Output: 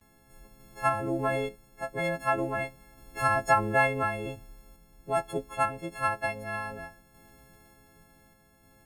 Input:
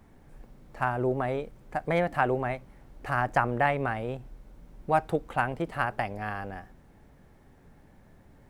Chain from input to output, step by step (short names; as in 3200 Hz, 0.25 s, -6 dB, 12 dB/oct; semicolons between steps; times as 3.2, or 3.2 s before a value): frequency quantiser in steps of 4 st; gate with hold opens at -48 dBFS; crackle 200/s -58 dBFS; random-step tremolo; speed mistake 25 fps video run at 24 fps